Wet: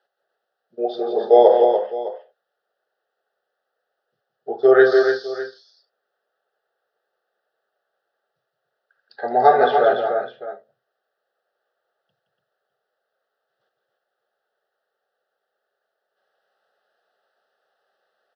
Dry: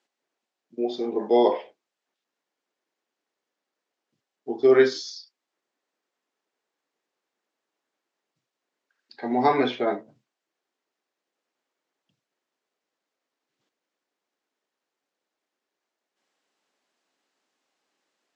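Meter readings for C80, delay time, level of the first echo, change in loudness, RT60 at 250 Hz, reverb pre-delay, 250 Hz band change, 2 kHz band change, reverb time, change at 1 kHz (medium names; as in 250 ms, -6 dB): no reverb, 170 ms, -7.5 dB, +6.0 dB, no reverb, no reverb, 0.0 dB, +8.5 dB, no reverb, +9.0 dB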